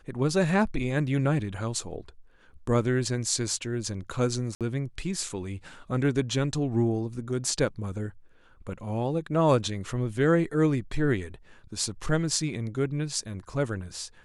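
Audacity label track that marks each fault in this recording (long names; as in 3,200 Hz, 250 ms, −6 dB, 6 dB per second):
4.550000	4.610000	drop-out 57 ms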